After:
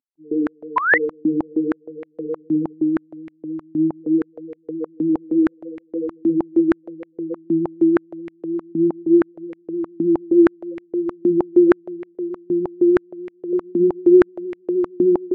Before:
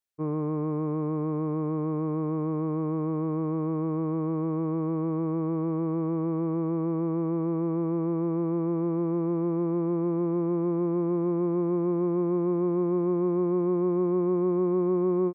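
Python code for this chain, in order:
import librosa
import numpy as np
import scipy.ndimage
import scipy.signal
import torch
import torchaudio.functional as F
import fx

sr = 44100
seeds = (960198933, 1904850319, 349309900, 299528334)

y = fx.cvsd(x, sr, bps=16000)
y = y + 10.0 ** (-10.5 / 20.0) * np.pad(y, (int(108 * sr / 1000.0), 0))[:len(y)]
y = fx.spec_topn(y, sr, count=4)
y = y + 10.0 ** (-21.5 / 20.0) * np.pad(y, (int(879 * sr / 1000.0), 0))[:len(y)]
y = fx.spec_paint(y, sr, seeds[0], shape='rise', start_s=0.76, length_s=0.22, low_hz=960.0, high_hz=2100.0, level_db=-22.0)
y = fx.tilt_eq(y, sr, slope=2.5, at=(12.15, 13.53))
y = fx.filter_held_highpass(y, sr, hz=6.4, low_hz=260.0, high_hz=2100.0)
y = y * 10.0 ** (5.5 / 20.0)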